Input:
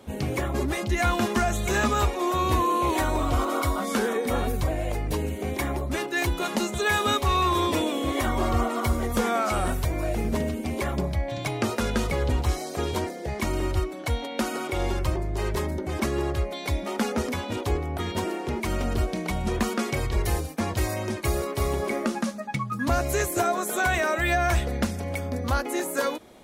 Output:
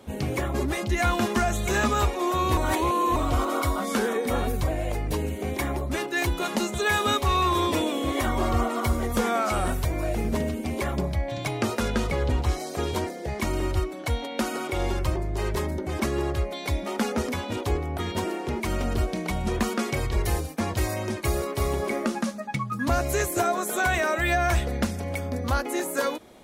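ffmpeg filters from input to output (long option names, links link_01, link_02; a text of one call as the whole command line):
ffmpeg -i in.wav -filter_complex "[0:a]asettb=1/sr,asplit=3[link_01][link_02][link_03];[link_01]atrim=end=11.884[link_04];[link_02]atrim=start=11.88:end=12.6,asetpts=PTS-STARTPTS,afade=type=in:duration=0.004:curve=qsin,afade=type=out:start_time=0.716:duration=0.004:curve=qsin,highshelf=frequency=7900:gain=-6.5[link_05];[link_03]atrim=start=12.596[link_06];[link_04][link_05]acrossfade=duration=0.004:curve1=hsin:curve2=qsin[link_07];[link_07][link_06]acrossfade=duration=0.004:curve1=qsin:curve2=hsin,asplit=3[link_08][link_09][link_10];[link_08]atrim=end=2.572[link_11];[link_09]atrim=start=2.568:end=3.162,asetpts=PTS-STARTPTS,areverse[link_12];[link_10]atrim=start=3.158[link_13];[link_11][link_12]acrossfade=duration=0.004:curve1=hsin:curve2=hsin[link_14];[link_14][link_13]acrossfade=duration=0.004:curve1=hsin:curve2=hsin" out.wav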